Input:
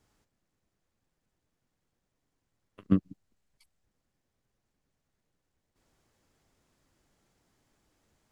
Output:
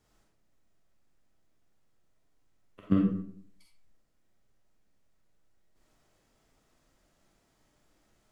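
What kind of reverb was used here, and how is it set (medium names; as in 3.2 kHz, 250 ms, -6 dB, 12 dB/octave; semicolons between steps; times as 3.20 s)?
algorithmic reverb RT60 0.63 s, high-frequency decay 0.6×, pre-delay 5 ms, DRR -2.5 dB; trim -1.5 dB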